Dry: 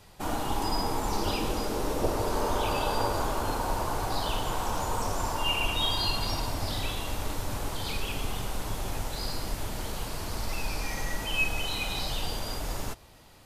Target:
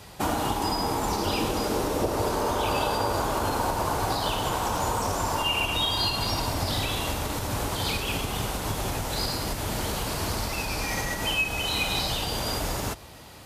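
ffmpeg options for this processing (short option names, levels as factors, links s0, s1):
-af "acompressor=threshold=0.0316:ratio=6,highpass=53,volume=2.82"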